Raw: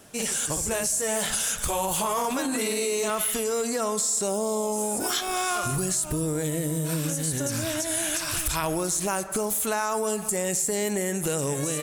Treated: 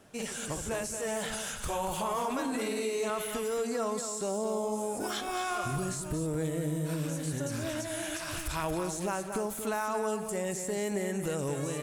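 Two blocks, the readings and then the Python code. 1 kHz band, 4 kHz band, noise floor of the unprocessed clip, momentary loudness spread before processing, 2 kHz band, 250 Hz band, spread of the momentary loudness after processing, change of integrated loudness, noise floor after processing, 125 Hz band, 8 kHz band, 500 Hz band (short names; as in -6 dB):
-5.0 dB, -8.5 dB, -32 dBFS, 3 LU, -6.0 dB, -4.5 dB, 3 LU, -7.5 dB, -39 dBFS, -4.5 dB, -12.5 dB, -4.5 dB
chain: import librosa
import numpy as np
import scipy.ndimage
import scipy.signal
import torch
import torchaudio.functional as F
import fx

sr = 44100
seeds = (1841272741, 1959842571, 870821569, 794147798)

p1 = fx.high_shelf(x, sr, hz=4500.0, db=-10.5)
p2 = p1 + fx.echo_single(p1, sr, ms=229, db=-8.0, dry=0)
y = F.gain(torch.from_numpy(p2), -5.0).numpy()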